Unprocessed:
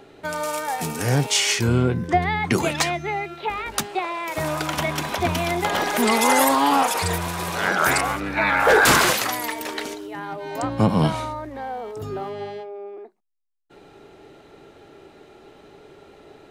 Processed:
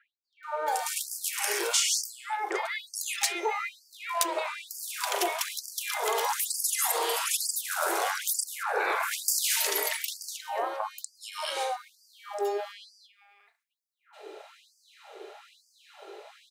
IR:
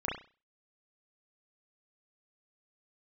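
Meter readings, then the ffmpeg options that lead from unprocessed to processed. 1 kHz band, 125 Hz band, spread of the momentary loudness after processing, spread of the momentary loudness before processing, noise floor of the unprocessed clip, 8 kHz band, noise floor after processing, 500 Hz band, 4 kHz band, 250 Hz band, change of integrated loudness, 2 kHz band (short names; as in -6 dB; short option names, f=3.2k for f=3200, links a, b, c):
-9.5 dB, under -40 dB, 17 LU, 15 LU, -49 dBFS, -1.0 dB, -74 dBFS, -9.5 dB, -5.5 dB, -21.5 dB, -7.5 dB, -10.5 dB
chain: -filter_complex "[0:a]acrossover=split=1600[a][b];[b]adelay=430[c];[a][c]amix=inputs=2:normalize=0,acrossover=split=490|6300[d][e][f];[d]acompressor=threshold=-36dB:ratio=4[g];[e]acompressor=threshold=-33dB:ratio=4[h];[f]acompressor=threshold=-29dB:ratio=4[i];[g][h][i]amix=inputs=3:normalize=0,asplit=2[j][k];[1:a]atrim=start_sample=2205[l];[k][l]afir=irnorm=-1:irlink=0,volume=-11dB[m];[j][m]amix=inputs=2:normalize=0,afftfilt=real='re*gte(b*sr/1024,310*pow(4600/310,0.5+0.5*sin(2*PI*1.1*pts/sr)))':imag='im*gte(b*sr/1024,310*pow(4600/310,0.5+0.5*sin(2*PI*1.1*pts/sr)))':win_size=1024:overlap=0.75,volume=1.5dB"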